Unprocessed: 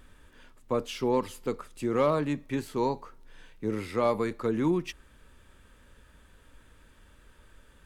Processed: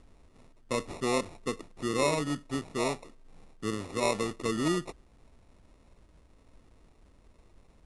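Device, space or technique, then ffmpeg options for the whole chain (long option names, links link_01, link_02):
crushed at another speed: -af "asetrate=88200,aresample=44100,acrusher=samples=14:mix=1:aa=0.000001,asetrate=22050,aresample=44100,volume=-2.5dB"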